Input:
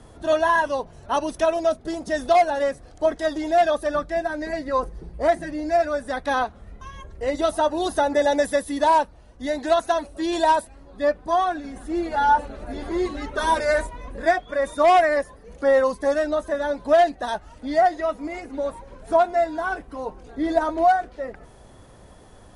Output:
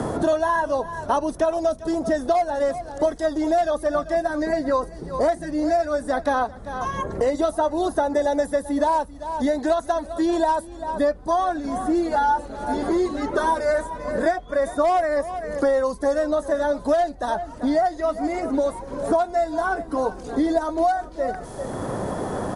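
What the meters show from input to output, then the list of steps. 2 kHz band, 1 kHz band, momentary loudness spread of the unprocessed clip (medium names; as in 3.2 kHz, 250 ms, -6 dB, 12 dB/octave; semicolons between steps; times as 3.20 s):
-3.5 dB, -1.5 dB, 11 LU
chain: peaking EQ 2.6 kHz -10 dB 1.2 oct; on a send: delay 391 ms -19 dB; on the sum: three bands compressed up and down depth 100%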